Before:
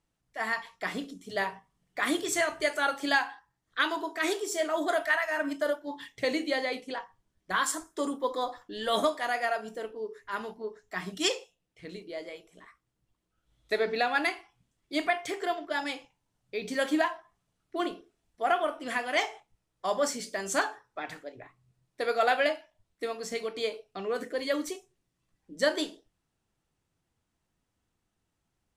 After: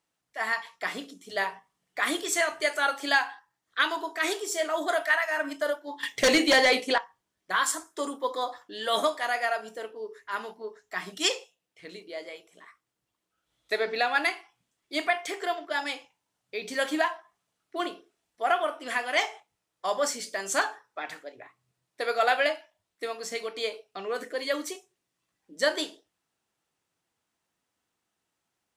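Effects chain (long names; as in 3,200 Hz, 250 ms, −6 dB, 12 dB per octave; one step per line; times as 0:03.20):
high-pass filter 540 Hz 6 dB per octave
0:06.03–0:06.98: sine wavefolder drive 8 dB, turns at −18.5 dBFS
level +3 dB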